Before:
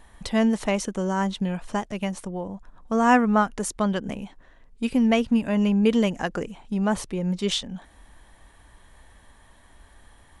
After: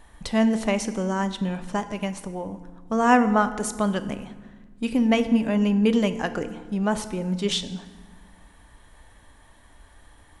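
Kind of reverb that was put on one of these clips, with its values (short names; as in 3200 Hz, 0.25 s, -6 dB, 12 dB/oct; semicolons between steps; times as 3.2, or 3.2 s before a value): FDN reverb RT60 1.4 s, low-frequency decay 1.5×, high-frequency decay 0.7×, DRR 10 dB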